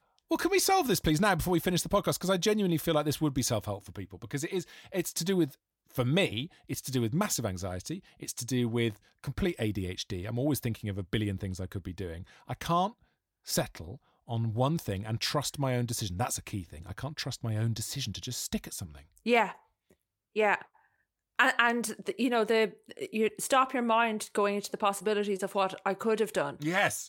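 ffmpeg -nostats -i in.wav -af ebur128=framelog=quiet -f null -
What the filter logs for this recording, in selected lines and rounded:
Integrated loudness:
  I:         -30.6 LUFS
  Threshold: -40.9 LUFS
Loudness range:
  LRA:         5.8 LU
  Threshold: -51.4 LUFS
  LRA low:   -34.1 LUFS
  LRA high:  -28.3 LUFS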